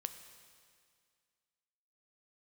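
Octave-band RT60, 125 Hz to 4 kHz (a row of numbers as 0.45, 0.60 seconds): 2.1, 2.2, 2.1, 2.1, 2.1, 2.1 seconds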